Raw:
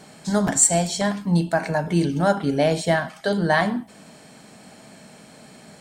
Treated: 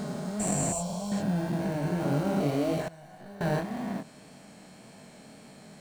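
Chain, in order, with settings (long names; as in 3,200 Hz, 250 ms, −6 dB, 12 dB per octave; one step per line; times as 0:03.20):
spectrum averaged block by block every 400 ms
dynamic equaliser 3,300 Hz, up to −6 dB, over −45 dBFS, Q 0.71
in parallel at −9 dB: decimation without filtering 26×
on the sum: chorus effect 1.8 Hz, delay 20 ms, depth 7.6 ms
0:00.72–0:01.12: phaser with its sweep stopped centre 750 Hz, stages 4
0:02.88–0:03.41: tuned comb filter 740 Hz, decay 0.42 s, mix 90%
level −1.5 dB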